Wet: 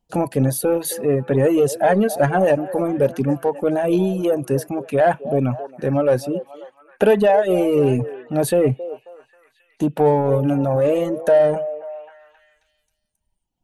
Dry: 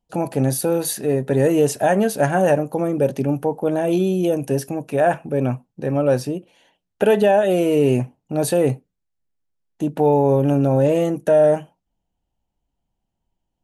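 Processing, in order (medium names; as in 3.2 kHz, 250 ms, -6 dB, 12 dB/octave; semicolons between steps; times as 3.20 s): dynamic bell 6.3 kHz, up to -7 dB, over -44 dBFS, Q 0.72; in parallel at -5.5 dB: saturation -19 dBFS, distortion -9 dB; on the sum: reverb removal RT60 1.8 s; repeats whose band climbs or falls 269 ms, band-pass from 550 Hz, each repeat 0.7 oct, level -12 dB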